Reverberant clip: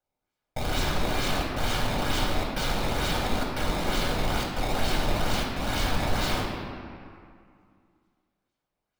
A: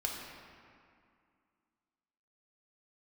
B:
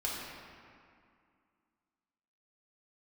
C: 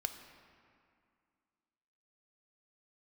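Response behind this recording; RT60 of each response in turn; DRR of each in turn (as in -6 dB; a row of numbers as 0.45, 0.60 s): A; 2.3, 2.3, 2.3 s; -2.0, -6.0, 6.5 dB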